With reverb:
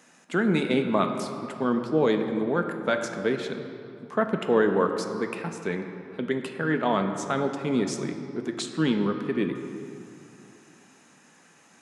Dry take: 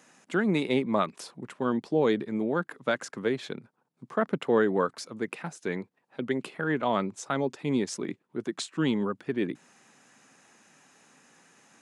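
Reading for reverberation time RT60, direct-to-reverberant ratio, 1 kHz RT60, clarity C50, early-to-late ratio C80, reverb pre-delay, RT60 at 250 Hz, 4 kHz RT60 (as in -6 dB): 2.6 s, 5.0 dB, 2.6 s, 7.0 dB, 7.5 dB, 4 ms, 3.0 s, 1.5 s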